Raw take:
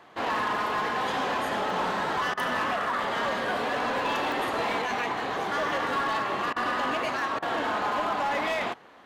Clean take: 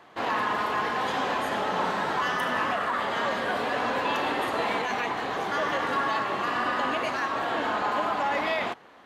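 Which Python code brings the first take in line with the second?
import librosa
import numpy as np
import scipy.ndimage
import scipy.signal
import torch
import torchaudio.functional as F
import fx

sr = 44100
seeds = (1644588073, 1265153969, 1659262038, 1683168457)

y = fx.fix_declip(x, sr, threshold_db=-22.5)
y = fx.fix_interpolate(y, sr, at_s=(1.7, 3.04, 4.32), length_ms=1.9)
y = fx.fix_interpolate(y, sr, at_s=(2.34, 6.53, 7.39), length_ms=32.0)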